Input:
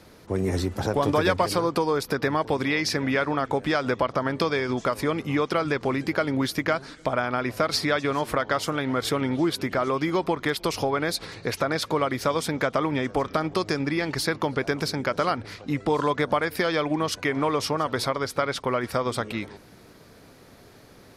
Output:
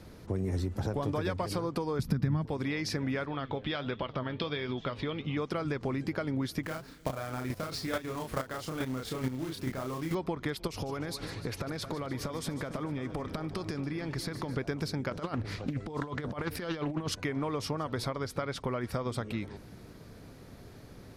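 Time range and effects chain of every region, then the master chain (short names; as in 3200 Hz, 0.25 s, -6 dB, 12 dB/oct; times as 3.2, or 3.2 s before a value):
1.99–2.46 resonant low shelf 290 Hz +13 dB, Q 1.5 + mismatched tape noise reduction encoder only
3.26–5.37 flange 1.4 Hz, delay 4.4 ms, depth 5.3 ms, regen +70% + synth low-pass 3400 Hz, resonance Q 4
6.63–10.15 companded quantiser 4-bit + doubler 31 ms -3 dB + chopper 2.3 Hz, depth 65%, duty 10%
10.67–14.57 compressor, threshold -28 dBFS + split-band echo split 2600 Hz, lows 0.221 s, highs 0.149 s, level -12 dB
15.1–17.15 negative-ratio compressor -28 dBFS, ratio -0.5 + Doppler distortion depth 0.35 ms
whole clip: low shelf 250 Hz +11 dB; compressor 2.5:1, threshold -28 dBFS; gain -4.5 dB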